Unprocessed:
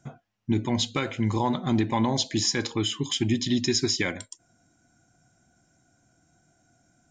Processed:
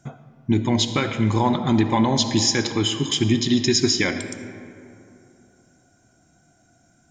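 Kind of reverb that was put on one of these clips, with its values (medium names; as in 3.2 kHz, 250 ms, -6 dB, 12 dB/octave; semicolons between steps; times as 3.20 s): algorithmic reverb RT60 2.8 s, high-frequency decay 0.45×, pre-delay 30 ms, DRR 9 dB; trim +5 dB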